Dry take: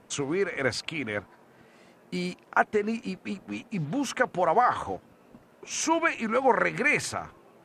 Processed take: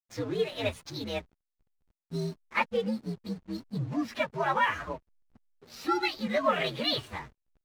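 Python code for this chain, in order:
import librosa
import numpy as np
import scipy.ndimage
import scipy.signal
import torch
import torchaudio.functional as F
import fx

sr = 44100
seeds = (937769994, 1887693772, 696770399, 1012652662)

y = fx.partial_stretch(x, sr, pct=125)
y = scipy.signal.sosfilt(scipy.signal.butter(2, 6700.0, 'lowpass', fs=sr, output='sos'), y)
y = fx.backlash(y, sr, play_db=-44.0)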